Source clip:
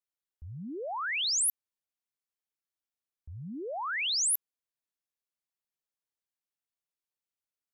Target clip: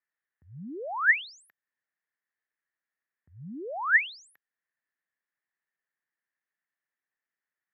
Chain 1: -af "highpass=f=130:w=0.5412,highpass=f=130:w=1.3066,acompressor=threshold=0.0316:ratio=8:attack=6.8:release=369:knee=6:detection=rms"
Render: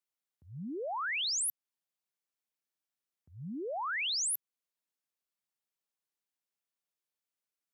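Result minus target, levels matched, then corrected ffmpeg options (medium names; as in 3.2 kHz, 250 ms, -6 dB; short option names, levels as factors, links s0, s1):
2 kHz band -5.5 dB
-af "highpass=f=130:w=0.5412,highpass=f=130:w=1.3066,acompressor=threshold=0.0316:ratio=8:attack=6.8:release=369:knee=6:detection=rms,lowpass=f=1800:t=q:w=8.7"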